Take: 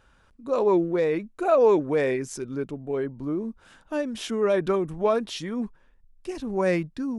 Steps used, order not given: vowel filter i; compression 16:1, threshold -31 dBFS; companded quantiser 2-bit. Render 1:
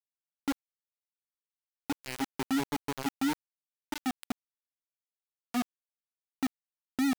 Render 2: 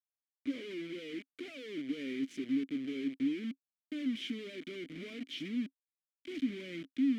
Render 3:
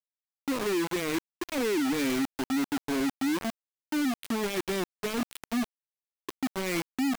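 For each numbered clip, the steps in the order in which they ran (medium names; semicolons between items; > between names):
compression > vowel filter > companded quantiser; compression > companded quantiser > vowel filter; vowel filter > compression > companded quantiser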